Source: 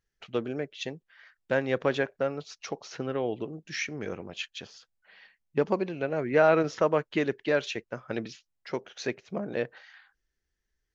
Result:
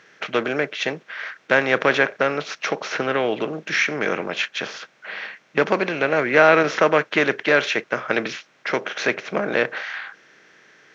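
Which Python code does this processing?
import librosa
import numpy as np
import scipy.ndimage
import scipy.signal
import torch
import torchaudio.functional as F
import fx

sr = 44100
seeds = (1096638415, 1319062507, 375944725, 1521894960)

y = fx.bin_compress(x, sr, power=0.6)
y = scipy.signal.sosfilt(scipy.signal.butter(4, 130.0, 'highpass', fs=sr, output='sos'), y)
y = fx.peak_eq(y, sr, hz=1900.0, db=9.5, octaves=1.9)
y = y * librosa.db_to_amplitude(2.0)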